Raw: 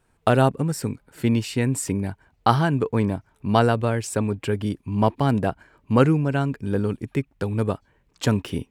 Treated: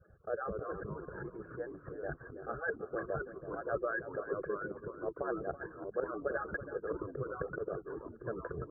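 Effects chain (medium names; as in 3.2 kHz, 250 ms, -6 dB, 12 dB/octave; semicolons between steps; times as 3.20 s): harmonic-percussive separation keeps percussive; bass shelf 220 Hz +12 dB; slow attack 259 ms; reverse; compression 6:1, threshold -41 dBFS, peak gain reduction 18 dB; reverse; rippled Chebyshev low-pass 1.7 kHz, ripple 6 dB; static phaser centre 970 Hz, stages 6; comb of notches 990 Hz; on a send: delay 329 ms -12.5 dB; on the sum: ever faster or slower copies 187 ms, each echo -2 st, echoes 3, each echo -6 dB; trim +12.5 dB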